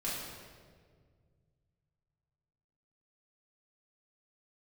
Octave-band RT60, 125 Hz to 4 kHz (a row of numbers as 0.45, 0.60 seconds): 3.5, 2.4, 2.1, 1.5, 1.4, 1.2 seconds